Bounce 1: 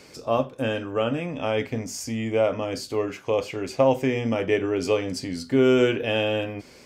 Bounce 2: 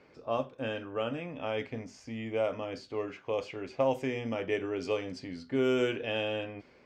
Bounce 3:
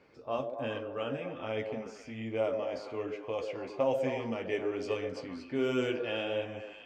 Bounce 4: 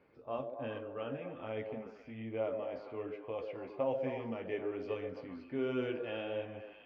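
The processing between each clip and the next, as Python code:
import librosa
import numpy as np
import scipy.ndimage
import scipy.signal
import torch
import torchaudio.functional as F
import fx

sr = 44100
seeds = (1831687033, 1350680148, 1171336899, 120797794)

y1 = fx.env_lowpass(x, sr, base_hz=1900.0, full_db=-15.0)
y1 = fx.low_shelf(y1, sr, hz=330.0, db=-4.0)
y1 = y1 * librosa.db_to_amplitude(-7.5)
y2 = fx.chorus_voices(y1, sr, voices=2, hz=1.3, base_ms=12, depth_ms=3.4, mix_pct=30)
y2 = fx.echo_stepped(y2, sr, ms=131, hz=450.0, octaves=0.7, feedback_pct=70, wet_db=-3.0)
y3 = fx.air_absorb(y2, sr, metres=290.0)
y3 = y3 * librosa.db_to_amplitude(-4.0)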